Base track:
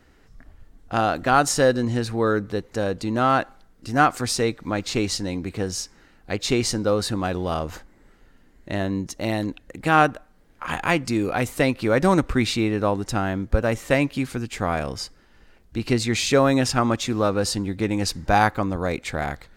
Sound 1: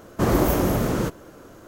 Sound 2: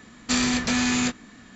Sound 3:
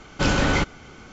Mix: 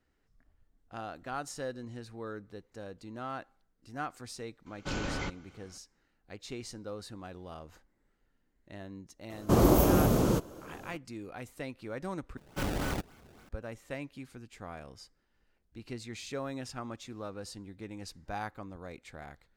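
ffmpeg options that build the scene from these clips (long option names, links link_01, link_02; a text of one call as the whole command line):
ffmpeg -i bed.wav -i cue0.wav -i cue1.wav -i cue2.wav -filter_complex "[3:a]asplit=2[link_01][link_02];[0:a]volume=-20dB[link_03];[1:a]equalizer=frequency=1800:width_type=o:width=0.77:gain=-8.5[link_04];[link_02]acrusher=samples=24:mix=1:aa=0.000001:lfo=1:lforange=38.4:lforate=3.5[link_05];[link_03]asplit=2[link_06][link_07];[link_06]atrim=end=12.374[link_08];[link_05]atrim=end=1.12,asetpts=PTS-STARTPTS,volume=-12.5dB[link_09];[link_07]atrim=start=13.486[link_10];[link_01]atrim=end=1.12,asetpts=PTS-STARTPTS,volume=-15dB,afade=type=in:duration=0.004:curve=hsin,afade=type=out:start_time=1.116:duration=0.004:curve=hsin,adelay=4660[link_11];[link_04]atrim=end=1.67,asetpts=PTS-STARTPTS,volume=-2.5dB,afade=type=in:duration=0.004:curve=hsin,afade=type=out:start_time=1.666:duration=0.004:curve=hsin,adelay=410130S[link_12];[link_08][link_09]acrossfade=duration=0.004:curve1=hsin:curve2=hsin[link_13];[link_13][link_10]acrossfade=duration=0.004:curve1=hsin:curve2=hsin[link_14];[link_14][link_11][link_12]amix=inputs=3:normalize=0" out.wav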